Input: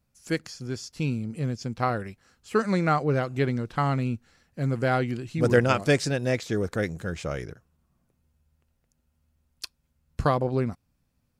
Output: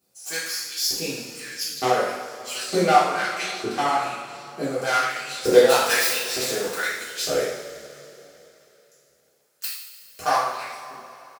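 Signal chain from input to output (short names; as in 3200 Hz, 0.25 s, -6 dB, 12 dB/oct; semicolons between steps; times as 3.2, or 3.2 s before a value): tracing distortion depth 0.21 ms; tone controls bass +9 dB, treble +11 dB; in parallel at +2 dB: limiter -18 dBFS, peak gain reduction 14.5 dB; on the sum: flange 1.7 Hz, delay 4.8 ms, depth 9.8 ms, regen +66%; on a send: feedback echo 69 ms, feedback 50%, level -11 dB; on the sum: LFO high-pass saw up 1.1 Hz 350–4800 Hz; two-slope reverb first 0.59 s, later 3.4 s, from -16 dB, DRR -9.5 dB; gain -7 dB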